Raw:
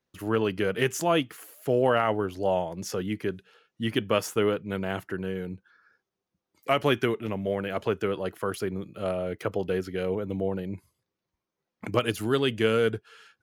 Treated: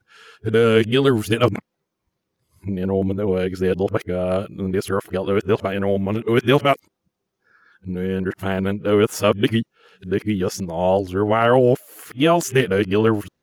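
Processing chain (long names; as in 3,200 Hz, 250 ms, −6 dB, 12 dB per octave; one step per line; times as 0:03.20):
played backwards from end to start
low-shelf EQ 420 Hz +4.5 dB
level +6 dB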